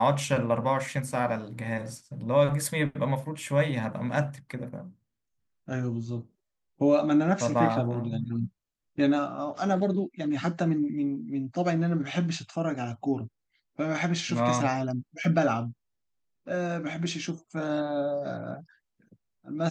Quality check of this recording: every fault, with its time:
0:15.24: drop-out 2.5 ms

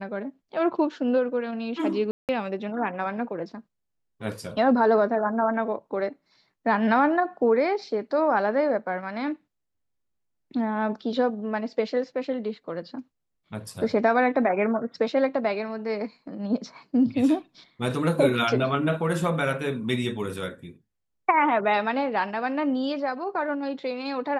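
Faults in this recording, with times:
0:02.11–0:02.29: drop-out 178 ms

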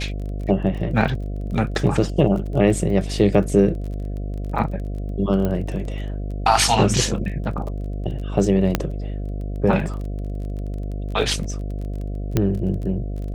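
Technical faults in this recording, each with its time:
mains buzz 50 Hz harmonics 14 −27 dBFS
surface crackle 22 per second −31 dBFS
0:05.45: click −12 dBFS
0:08.75: click −3 dBFS
0:12.37: click −6 dBFS

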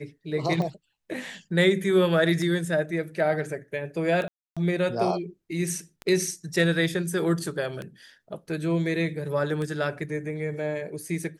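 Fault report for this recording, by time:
scratch tick 33 1/3 rpm −20 dBFS
0:04.28–0:04.57: drop-out 286 ms

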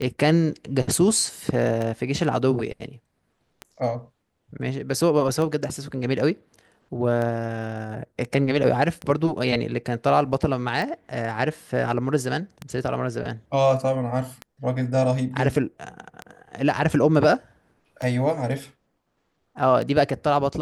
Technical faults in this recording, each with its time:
scratch tick 33 1/3 rpm −17 dBFS

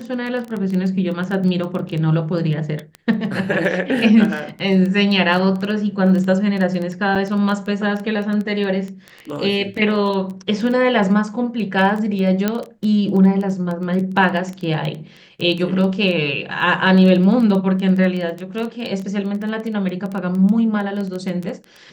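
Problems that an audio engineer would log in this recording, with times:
surface crackle 11 per second −22 dBFS
0:07.15–0:07.16: drop-out 6 ms
0:12.48: click −5 dBFS

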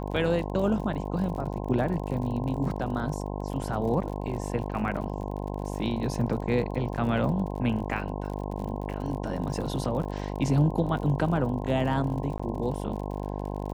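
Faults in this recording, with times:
mains buzz 50 Hz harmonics 21 −33 dBFS
surface crackle 53 per second −36 dBFS
0:12.38–0:12.39: drop-out 15 ms

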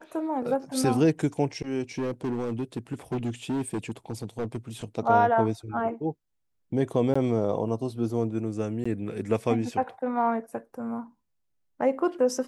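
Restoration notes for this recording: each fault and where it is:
0:01.98–0:04.57: clipping −25 dBFS
0:07.14–0:07.16: drop-out 15 ms
0:08.84–0:08.86: drop-out 15 ms

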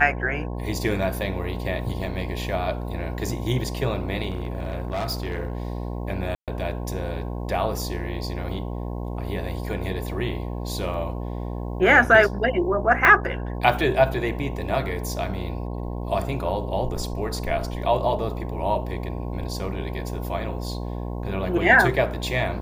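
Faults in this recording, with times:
mains buzz 60 Hz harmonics 18 −30 dBFS
0:04.30–0:05.67: clipping −23 dBFS
0:06.35–0:06.48: drop-out 127 ms
0:10.94: drop-out 2.3 ms
0:13.05: click −5 dBFS

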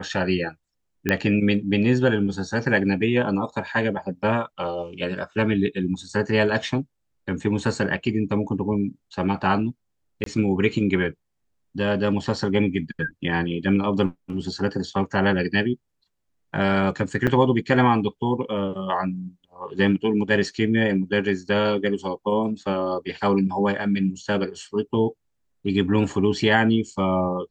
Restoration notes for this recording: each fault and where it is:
0:01.09: click −8 dBFS
0:10.24–0:10.26: drop-out 23 ms
0:17.27–0:17.28: drop-out 6.8 ms

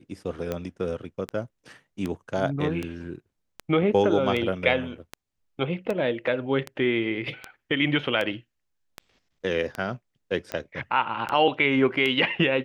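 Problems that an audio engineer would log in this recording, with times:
scratch tick 78 rpm −16 dBFS

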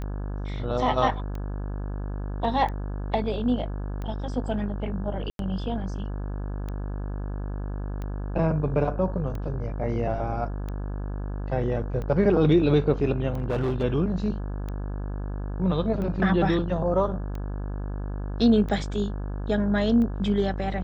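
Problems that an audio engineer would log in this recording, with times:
mains buzz 50 Hz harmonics 34 −31 dBFS
scratch tick 45 rpm −23 dBFS
0:05.30–0:05.39: drop-out 92 ms
0:13.34–0:13.84: clipping −21.5 dBFS

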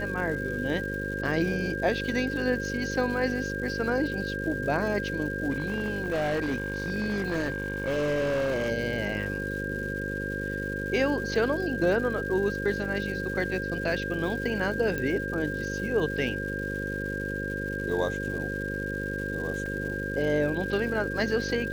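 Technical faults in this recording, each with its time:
mains buzz 50 Hz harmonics 11 −34 dBFS
surface crackle 410 per second −38 dBFS
whistle 1,600 Hz −33 dBFS
0:05.50–0:08.70: clipping −24 dBFS
0:14.98: click −18 dBFS
0:19.66: drop-out 2.7 ms

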